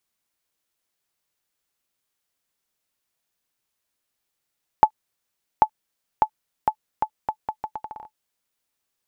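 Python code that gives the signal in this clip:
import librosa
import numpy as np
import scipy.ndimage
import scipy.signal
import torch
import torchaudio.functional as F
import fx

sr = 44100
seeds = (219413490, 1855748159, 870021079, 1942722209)

y = fx.bouncing_ball(sr, first_gap_s=0.79, ratio=0.76, hz=864.0, decay_ms=75.0, level_db=-1.5)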